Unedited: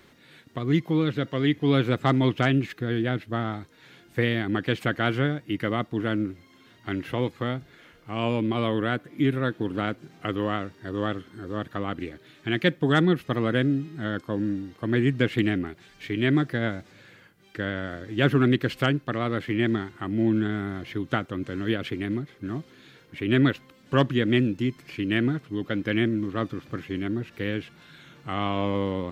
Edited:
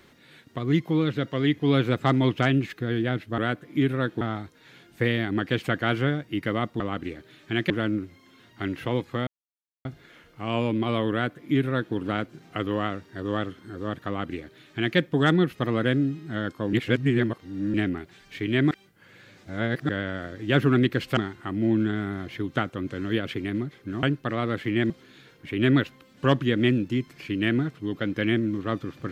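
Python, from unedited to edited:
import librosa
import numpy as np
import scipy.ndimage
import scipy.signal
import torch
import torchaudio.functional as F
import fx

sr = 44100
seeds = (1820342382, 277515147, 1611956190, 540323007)

y = fx.edit(x, sr, fx.insert_silence(at_s=7.54, length_s=0.58),
    fx.duplicate(start_s=8.81, length_s=0.83, to_s=3.38),
    fx.duplicate(start_s=11.76, length_s=0.9, to_s=5.97),
    fx.reverse_span(start_s=14.42, length_s=1.01),
    fx.reverse_span(start_s=16.4, length_s=1.18),
    fx.move(start_s=18.86, length_s=0.87, to_s=22.59), tone=tone)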